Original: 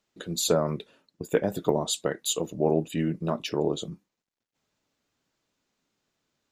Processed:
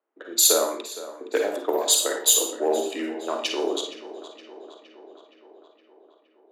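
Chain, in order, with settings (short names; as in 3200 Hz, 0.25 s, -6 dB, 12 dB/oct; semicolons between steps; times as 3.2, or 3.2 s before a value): Wiener smoothing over 9 samples; tilt +2.5 dB/oct; Schroeder reverb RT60 0.45 s, DRR 3 dB; in parallel at -6.5 dB: soft clip -23 dBFS, distortion -9 dB; on the sum: low-pass opened by the level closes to 1000 Hz, open at -20 dBFS; steep high-pass 270 Hz 48 dB/oct; high shelf 12000 Hz +11 dB; tape echo 0.467 s, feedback 68%, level -14 dB, low-pass 3900 Hz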